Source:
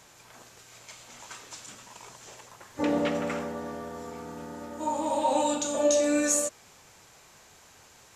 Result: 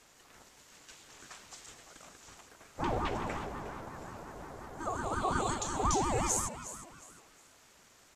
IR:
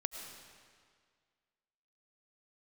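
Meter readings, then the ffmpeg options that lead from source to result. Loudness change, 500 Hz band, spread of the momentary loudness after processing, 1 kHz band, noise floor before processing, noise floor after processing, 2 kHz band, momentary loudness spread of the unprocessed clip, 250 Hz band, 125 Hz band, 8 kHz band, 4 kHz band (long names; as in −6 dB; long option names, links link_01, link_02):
−6.5 dB, −11.0 dB, 22 LU, −2.5 dB, −56 dBFS, −62 dBFS, −3.5 dB, 22 LU, −9.5 dB, +5.5 dB, −6.0 dB, −5.5 dB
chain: -filter_complex "[0:a]asplit=4[link_01][link_02][link_03][link_04];[link_02]adelay=359,afreqshift=110,volume=-13dB[link_05];[link_03]adelay=718,afreqshift=220,volume=-23.2dB[link_06];[link_04]adelay=1077,afreqshift=330,volume=-33.3dB[link_07];[link_01][link_05][link_06][link_07]amix=inputs=4:normalize=0,aeval=exprs='val(0)*sin(2*PI*410*n/s+410*0.6/5.6*sin(2*PI*5.6*n/s))':channel_layout=same,volume=-3.5dB"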